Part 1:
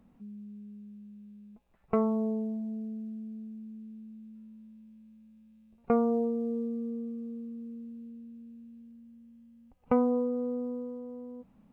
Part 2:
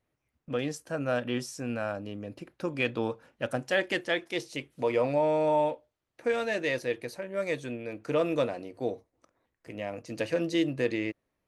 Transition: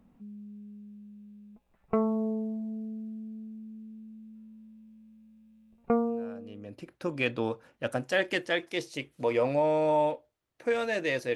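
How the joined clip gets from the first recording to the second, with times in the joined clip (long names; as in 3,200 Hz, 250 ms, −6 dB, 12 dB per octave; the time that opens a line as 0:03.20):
part 1
0:06.40: continue with part 2 from 0:01.99, crossfade 0.94 s quadratic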